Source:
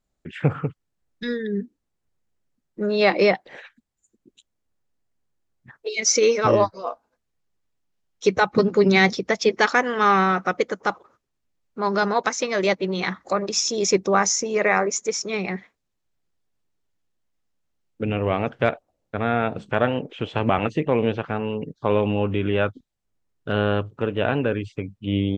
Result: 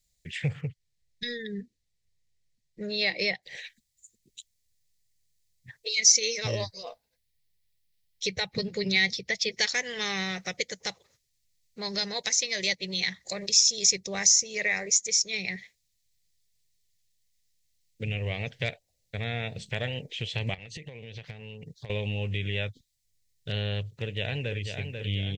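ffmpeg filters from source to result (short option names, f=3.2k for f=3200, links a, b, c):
-filter_complex "[0:a]asettb=1/sr,asplit=3[a][b][c];[a]atrim=end=0.614[d];[b]atrim=start=0.61:end=3.43,asetpts=PTS-STARTPTS,afade=t=in:d=0.004:c=qsin,afade=t=out:st=2.816:d=0.004:c=qsin,aemphasis=mode=reproduction:type=50kf[e];[c]atrim=start=3.426[f];[d][e]acrossfade=d=0.004:c1=hsin:c2=qsin[g];[g][f]acrossfade=d=0.004:c1=qsin:c2=hsin,asettb=1/sr,asplit=3[h][i][j];[h]atrim=end=6.834[k];[i]atrim=start=6.83:end=9.52,asetpts=PTS-STARTPTS,afade=t=in:d=0.004:c=qsin,afade=t=out:st=2.686:d=0.004:c=qsin,equalizer=f=6.7k:t=o:w=0.88:g=-9.5[l];[j]atrim=start=9.516[m];[k][l]acrossfade=d=0.004:c1=hsin:c2=qsin[n];[n][m]acrossfade=d=0.004:c1=qsin:c2=hsin,asettb=1/sr,asplit=3[o][p][q];[o]atrim=end=20.544[r];[p]atrim=start=20.54:end=21.9,asetpts=PTS-STARTPTS,afade=t=in:d=0.004:c=qsin,afade=t=out:st=1.356:d=0.004:c=qsin,acompressor=threshold=-31dB:ratio=20:attack=3.2:release=140:knee=1:detection=peak[s];[q]atrim=start=21.896[t];[r][s]acrossfade=d=0.004:c1=hsin:c2=qsin[u];[u][t]acrossfade=d=0.004:c1=qsin:c2=hsin,asplit=2[v][w];[w]afade=t=in:st=23.83:d=0.01,afade=t=out:st=24.65:d=0.01,aecho=0:1:490|980|1470|1960|2450|2940|3430|3920|4410:0.398107|0.25877|0.1682|0.10933|0.0710646|0.046192|0.0300248|0.0195161|0.0126855[x];[v][x]amix=inputs=2:normalize=0,firequalizer=gain_entry='entry(120,0);entry(280,-18);entry(470,-9);entry(1300,-23);entry(1900,3);entry(2800,2);entry(4100,11)':delay=0.05:min_phase=1,acompressor=threshold=-35dB:ratio=1.5,volume=1dB"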